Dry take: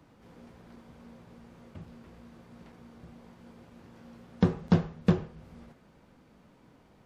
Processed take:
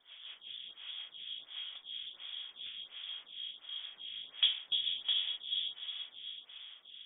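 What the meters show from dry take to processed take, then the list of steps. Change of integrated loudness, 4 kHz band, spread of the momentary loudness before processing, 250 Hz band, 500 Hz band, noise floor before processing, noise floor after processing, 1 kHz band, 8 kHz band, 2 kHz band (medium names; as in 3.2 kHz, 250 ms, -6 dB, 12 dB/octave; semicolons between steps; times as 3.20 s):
-9.0 dB, +22.5 dB, 6 LU, under -40 dB, under -30 dB, -61 dBFS, -62 dBFS, under -15 dB, no reading, -1.0 dB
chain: in parallel at -2 dB: compressor with a negative ratio -51 dBFS; on the sum: rotary cabinet horn 5.5 Hz, later 0.6 Hz, at 1.78 s; saturation -18.5 dBFS, distortion -13 dB; distance through air 270 m; on a send: echo that smears into a reverb 522 ms, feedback 41%, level -4 dB; on the sum: frequency inversion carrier 3.5 kHz; lamp-driven phase shifter 1.4 Hz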